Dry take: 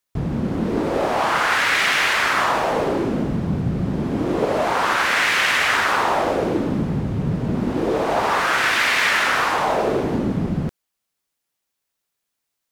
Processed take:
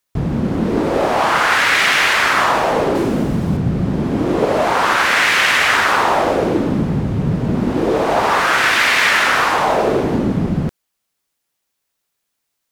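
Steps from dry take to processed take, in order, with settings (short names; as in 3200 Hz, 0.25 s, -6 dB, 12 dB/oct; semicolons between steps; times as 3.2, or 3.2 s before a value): 2.95–3.57 high shelf 6500 Hz +10 dB; gain +4.5 dB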